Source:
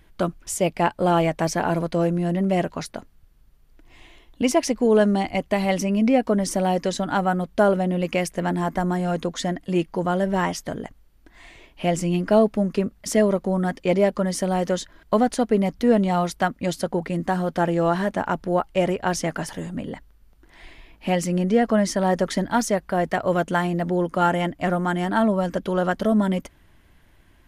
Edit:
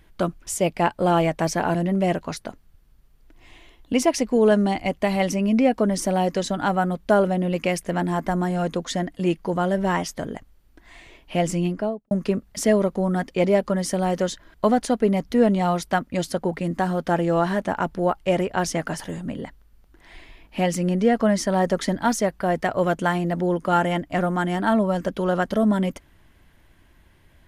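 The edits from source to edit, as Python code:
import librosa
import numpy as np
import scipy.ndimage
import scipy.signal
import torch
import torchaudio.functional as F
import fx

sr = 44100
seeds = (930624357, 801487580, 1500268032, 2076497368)

y = fx.studio_fade_out(x, sr, start_s=12.03, length_s=0.57)
y = fx.edit(y, sr, fx.cut(start_s=1.75, length_s=0.49), tone=tone)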